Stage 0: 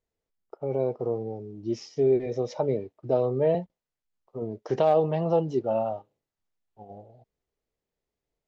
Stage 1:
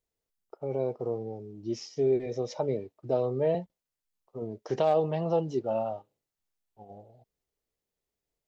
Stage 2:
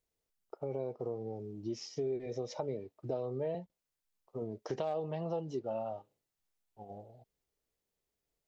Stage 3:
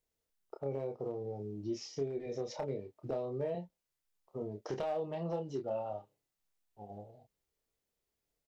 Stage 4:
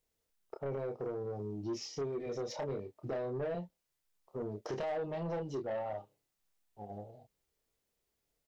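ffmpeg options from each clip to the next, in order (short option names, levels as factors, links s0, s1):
-af "highshelf=f=4100:g=7.5,volume=0.668"
-af "acompressor=threshold=0.0158:ratio=3"
-filter_complex "[0:a]volume=26.6,asoftclip=hard,volume=0.0376,asplit=2[s0][s1];[s1]adelay=29,volume=0.501[s2];[s0][s2]amix=inputs=2:normalize=0,volume=0.891"
-af "asoftclip=type=tanh:threshold=0.0188,volume=1.41"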